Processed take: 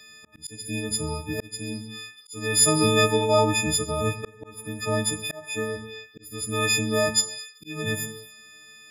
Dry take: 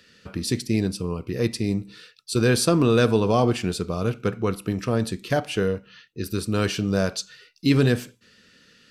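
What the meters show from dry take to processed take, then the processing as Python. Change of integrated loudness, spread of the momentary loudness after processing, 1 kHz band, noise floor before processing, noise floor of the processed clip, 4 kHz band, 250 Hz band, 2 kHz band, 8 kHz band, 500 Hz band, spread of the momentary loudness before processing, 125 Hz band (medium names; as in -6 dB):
-0.5 dB, 20 LU, +1.0 dB, -57 dBFS, -52 dBFS, +4.0 dB, -6.5 dB, +2.5 dB, +8.5 dB, -2.5 dB, 14 LU, -6.0 dB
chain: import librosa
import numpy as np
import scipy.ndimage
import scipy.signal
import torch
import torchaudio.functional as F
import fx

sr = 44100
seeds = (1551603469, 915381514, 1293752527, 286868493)

y = fx.freq_snap(x, sr, grid_st=6)
y = fx.rev_gated(y, sr, seeds[0], gate_ms=320, shape='falling', drr_db=9.0)
y = fx.auto_swell(y, sr, attack_ms=551.0)
y = F.gain(torch.from_numpy(y), -2.0).numpy()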